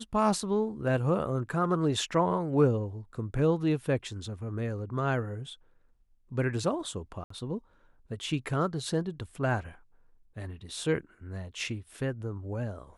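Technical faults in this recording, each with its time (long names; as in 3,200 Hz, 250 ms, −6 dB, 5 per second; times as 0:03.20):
0:07.24–0:07.30: drop-out 64 ms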